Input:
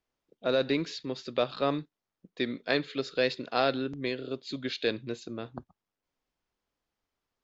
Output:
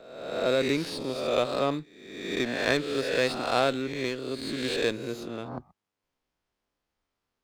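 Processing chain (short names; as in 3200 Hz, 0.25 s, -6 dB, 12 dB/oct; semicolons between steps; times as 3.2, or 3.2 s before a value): spectral swells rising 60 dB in 1.04 s; running maximum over 3 samples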